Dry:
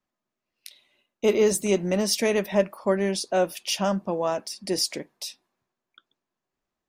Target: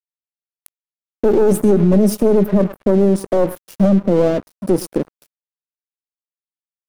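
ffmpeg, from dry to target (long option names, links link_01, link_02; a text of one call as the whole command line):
ffmpeg -i in.wav -filter_complex "[0:a]firequalizer=gain_entry='entry(530,0);entry(820,-19);entry(3800,-26);entry(11000,-6)':delay=0.05:min_phase=1,aeval=exprs='(tanh(7.94*val(0)+0.55)-tanh(0.55))/7.94':channel_layout=same,acrossover=split=210[link_01][link_02];[link_01]acompressor=threshold=-31dB:ratio=6[link_03];[link_03][link_02]amix=inputs=2:normalize=0,lowshelf=frequency=450:gain=7.5,aecho=1:1:107|214:0.0891|0.0214,aeval=exprs='sgn(val(0))*max(abs(val(0))-0.00631,0)':channel_layout=same,asettb=1/sr,asplit=3[link_04][link_05][link_06];[link_04]atrim=end=1.714[link_07];[link_05]atrim=start=1.71:end=2.59,asetpts=PTS-STARTPTS,afade=type=in:duration=0.004:curve=qsin,afade=type=out:start_time=0.876:duration=0.004:curve=qsin,aecho=1:1:4.8:0.59,atrim=end_sample=38808[link_08];[link_06]atrim=start=2.586[link_09];[link_07][link_08]acrossfade=duration=0.004:curve1=hsin:curve2=qsin[link_10];[link_10][link_09]acrossfade=duration=0.004:curve1=qsin:curve2=hsin,alimiter=level_in=22dB:limit=-1dB:release=50:level=0:latency=1,volume=-5dB" out.wav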